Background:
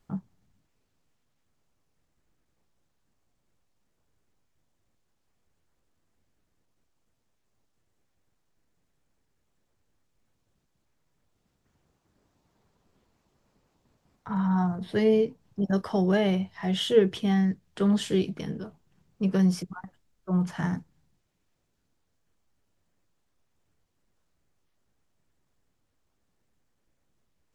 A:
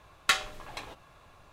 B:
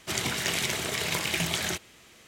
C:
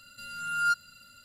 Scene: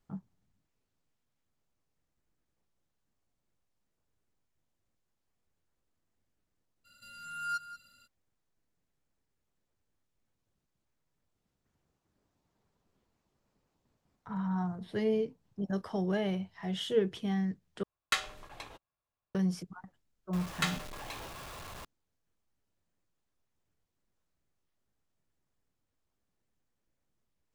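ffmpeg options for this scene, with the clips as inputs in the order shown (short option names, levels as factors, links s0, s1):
-filter_complex "[1:a]asplit=2[s0][s1];[0:a]volume=0.398[s2];[3:a]aecho=1:1:186:0.2[s3];[s0]agate=range=0.0251:threshold=0.00398:ratio=16:release=82:detection=peak[s4];[s1]aeval=exprs='val(0)+0.5*0.0251*sgn(val(0))':c=same[s5];[s2]asplit=2[s6][s7];[s6]atrim=end=17.834[s8];[s4]atrim=end=1.52,asetpts=PTS-STARTPTS,volume=0.531[s9];[s7]atrim=start=19.346[s10];[s3]atrim=end=1.24,asetpts=PTS-STARTPTS,volume=0.355,afade=t=in:d=0.02,afade=t=out:st=1.22:d=0.02,adelay=6840[s11];[s5]atrim=end=1.52,asetpts=PTS-STARTPTS,volume=0.376,afade=t=in:d=0.004:c=hsin,afade=t=out:st=1.516:d=0.004:c=hsin,adelay=20330[s12];[s8][s9]acrossfade=d=0.004:c1=hsin:c2=hsin[s13];[s13][s10]acrossfade=d=0.004:c1=hsin:c2=hsin[s14];[s14][s11][s12]amix=inputs=3:normalize=0"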